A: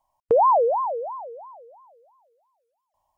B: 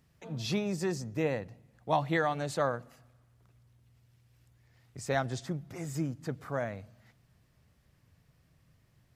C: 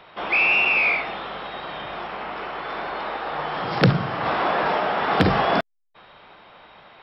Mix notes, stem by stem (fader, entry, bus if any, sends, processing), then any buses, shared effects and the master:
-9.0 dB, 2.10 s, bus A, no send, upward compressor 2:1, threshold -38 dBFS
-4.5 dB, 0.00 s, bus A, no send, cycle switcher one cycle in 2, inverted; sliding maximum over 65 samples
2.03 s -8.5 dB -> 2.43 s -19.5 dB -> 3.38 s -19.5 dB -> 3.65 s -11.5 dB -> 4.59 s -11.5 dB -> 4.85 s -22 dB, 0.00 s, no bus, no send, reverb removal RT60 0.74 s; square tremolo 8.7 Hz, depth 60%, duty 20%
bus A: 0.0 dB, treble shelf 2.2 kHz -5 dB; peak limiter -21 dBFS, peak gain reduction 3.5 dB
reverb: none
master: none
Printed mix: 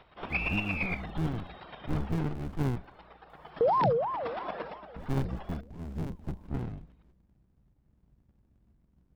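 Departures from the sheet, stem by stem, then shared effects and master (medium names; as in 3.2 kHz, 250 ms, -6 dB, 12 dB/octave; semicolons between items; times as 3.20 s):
stem A: entry 2.10 s -> 3.30 s; master: extra bass shelf 390 Hz +6.5 dB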